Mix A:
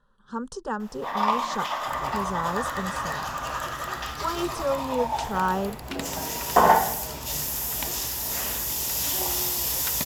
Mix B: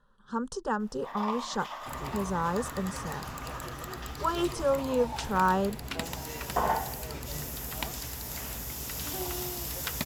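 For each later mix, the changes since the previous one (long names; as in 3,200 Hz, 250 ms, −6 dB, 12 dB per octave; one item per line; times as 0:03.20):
first sound −11.0 dB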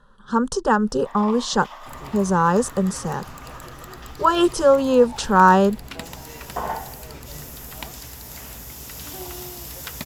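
speech +12.0 dB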